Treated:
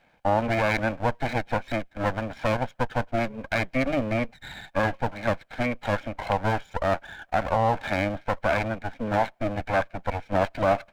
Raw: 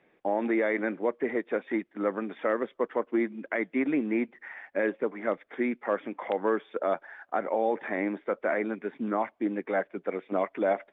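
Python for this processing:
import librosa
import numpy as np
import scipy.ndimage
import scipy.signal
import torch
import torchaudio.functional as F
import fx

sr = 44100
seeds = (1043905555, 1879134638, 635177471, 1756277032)

y = fx.lower_of_two(x, sr, delay_ms=1.3)
y = y * 10.0 ** (5.5 / 20.0)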